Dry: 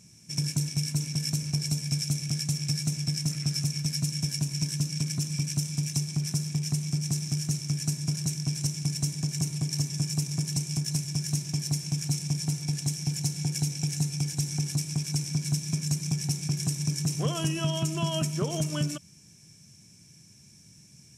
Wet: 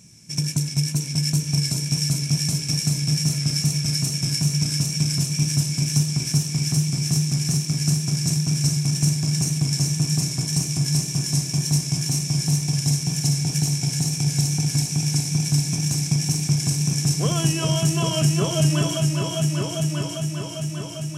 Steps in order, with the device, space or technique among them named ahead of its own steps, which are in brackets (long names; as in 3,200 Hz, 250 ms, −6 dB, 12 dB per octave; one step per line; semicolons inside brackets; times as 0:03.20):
multi-head tape echo (echo machine with several playback heads 399 ms, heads all three, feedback 62%, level −8 dB; tape wow and flutter 24 cents)
level +5 dB